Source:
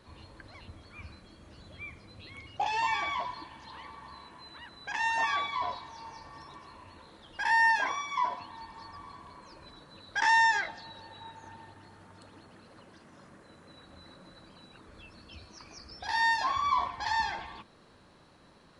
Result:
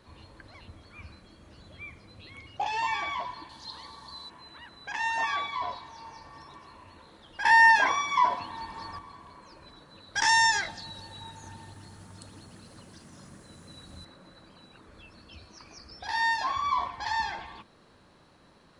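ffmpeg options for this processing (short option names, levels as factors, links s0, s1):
-filter_complex "[0:a]asettb=1/sr,asplit=3[s0][s1][s2];[s0]atrim=end=3.494[s3];[s1]atrim=start=3.49:end=4.3,asetpts=PTS-STARTPTS,afade=t=in:d=0.004:c=qsin,afade=t=out:st=0.806:d=0.004:c=qsin,highshelf=f=3300:t=q:w=3:g=7.5[s4];[s2]atrim=start=4.296[s5];[s3][s4]acrossfade=d=0.004:c1=hsin:c2=qsin[s6];[s6][s5]acrossfade=d=0.004:c1=qsin:c2=hsin,asettb=1/sr,asplit=3[s7][s8][s9];[s7]atrim=end=7.444[s10];[s8]atrim=start=7.44:end=8.99,asetpts=PTS-STARTPTS,afade=t=in:d=0.004:c=qsin,afade=t=out:st=1.546:d=0.004:c=qsin,acontrast=70[s11];[s9]atrim=start=8.986[s12];[s10][s11]acrossfade=d=0.004:c1=hsin:c2=qsin[s13];[s13][s12]acrossfade=d=0.004:c1=qsin:c2=hsin,asettb=1/sr,asplit=3[s14][s15][s16];[s14]atrim=end=10.154[s17];[s15]atrim=start=10.15:end=14.05,asetpts=PTS-STARTPTS,afade=t=in:d=0.004:c=qsin,afade=t=out:st=3.896:d=0.004:c=qsin,bass=f=250:g=9,treble=f=4000:g=14[s18];[s16]atrim=start=14.046[s19];[s17][s18]acrossfade=d=0.004:c1=hsin:c2=qsin[s20];[s20][s19]acrossfade=d=0.004:c1=qsin:c2=hsin"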